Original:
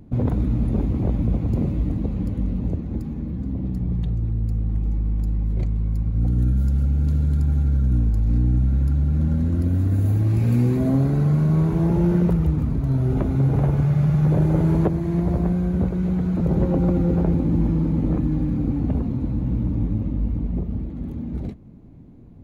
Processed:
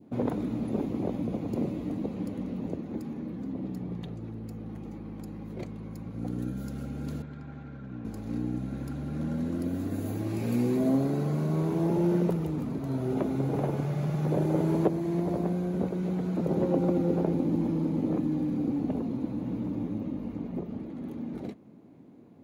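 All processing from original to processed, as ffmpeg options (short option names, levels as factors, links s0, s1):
-filter_complex "[0:a]asettb=1/sr,asplit=3[s0][s1][s2];[s0]atrim=end=7.224[s3];[s1]atrim=start=7.22:end=8.05,asetpts=PTS-STARTPTS,afade=t=in:d=0.004:c=qsin,afade=t=out:st=0.826:d=0.004:c=qsin,highpass=100,lowpass=2300,equalizer=f=330:t=o:w=2.8:g=-8[s4];[s2]atrim=start=8.046[s5];[s3][s4]acrossfade=d=0.004:c1=hsin:c2=qsin[s6];[s6][s5]acrossfade=d=0.004:c1=qsin:c2=hsin,highpass=280,adynamicequalizer=threshold=0.00501:dfrequency=1500:dqfactor=0.88:tfrequency=1500:tqfactor=0.88:attack=5:release=100:ratio=0.375:range=3:mode=cutabove:tftype=bell"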